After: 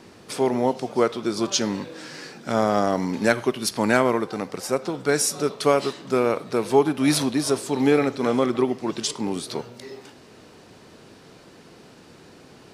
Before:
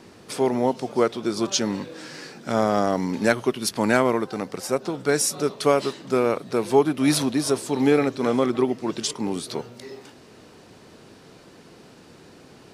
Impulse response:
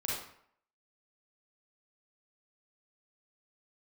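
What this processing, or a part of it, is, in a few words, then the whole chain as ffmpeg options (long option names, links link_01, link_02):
filtered reverb send: -filter_complex "[0:a]asplit=2[link_01][link_02];[link_02]highpass=490,lowpass=8300[link_03];[1:a]atrim=start_sample=2205[link_04];[link_03][link_04]afir=irnorm=-1:irlink=0,volume=-19dB[link_05];[link_01][link_05]amix=inputs=2:normalize=0"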